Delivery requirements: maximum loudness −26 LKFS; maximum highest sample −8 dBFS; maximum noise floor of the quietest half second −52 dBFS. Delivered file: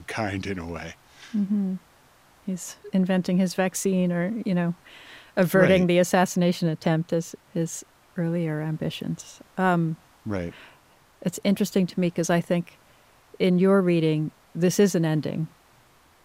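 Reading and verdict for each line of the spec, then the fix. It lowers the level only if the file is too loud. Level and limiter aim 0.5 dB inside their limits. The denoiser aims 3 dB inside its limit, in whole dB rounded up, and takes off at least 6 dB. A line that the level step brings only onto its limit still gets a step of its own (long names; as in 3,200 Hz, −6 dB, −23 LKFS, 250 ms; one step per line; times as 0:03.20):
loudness −24.5 LKFS: out of spec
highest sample −5.0 dBFS: out of spec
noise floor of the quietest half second −57 dBFS: in spec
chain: level −2 dB
brickwall limiter −8.5 dBFS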